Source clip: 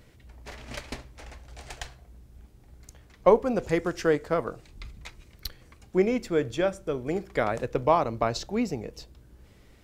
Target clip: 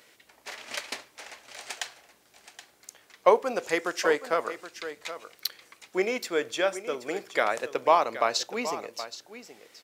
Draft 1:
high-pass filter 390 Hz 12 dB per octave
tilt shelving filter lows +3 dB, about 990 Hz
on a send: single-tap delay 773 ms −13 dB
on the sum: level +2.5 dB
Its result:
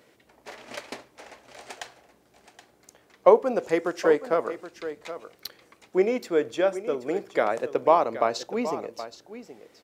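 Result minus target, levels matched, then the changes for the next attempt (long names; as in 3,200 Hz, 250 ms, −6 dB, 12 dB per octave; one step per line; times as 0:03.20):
1,000 Hz band −3.5 dB
change: tilt shelving filter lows −4.5 dB, about 990 Hz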